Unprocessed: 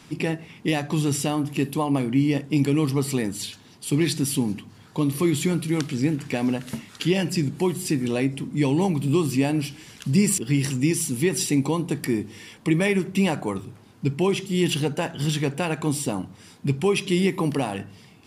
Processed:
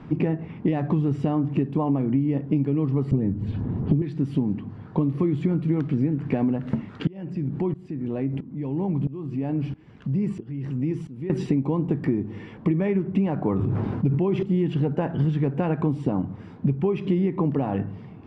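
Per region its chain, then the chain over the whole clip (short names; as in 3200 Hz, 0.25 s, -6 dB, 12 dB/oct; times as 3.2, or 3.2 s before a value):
3.11–4.02 tilt -4 dB/oct + dispersion highs, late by 82 ms, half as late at 2900 Hz + three-band squash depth 40%
7.07–11.3 compressor 2.5:1, threshold -32 dBFS + tremolo saw up 1.5 Hz, depth 90%
13.4–14.43 high shelf 11000 Hz +4.5 dB + sustainer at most 29 dB/s
whole clip: LPF 1400 Hz 12 dB/oct; low shelf 430 Hz +7.5 dB; compressor 10:1, threshold -23 dBFS; gain +4 dB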